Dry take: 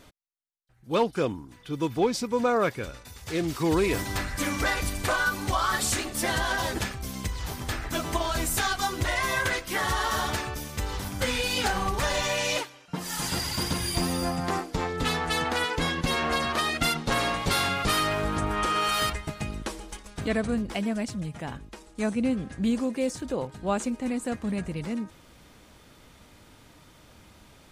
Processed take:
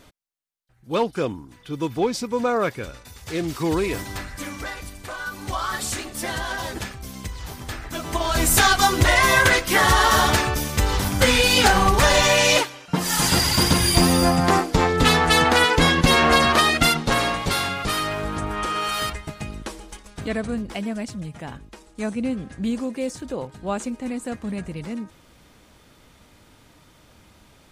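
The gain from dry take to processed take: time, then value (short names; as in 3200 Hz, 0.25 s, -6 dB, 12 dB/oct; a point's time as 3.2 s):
3.66 s +2 dB
5.06 s -9 dB
5.54 s -1 dB
7.98 s -1 dB
8.53 s +10.5 dB
16.5 s +10.5 dB
17.75 s +0.5 dB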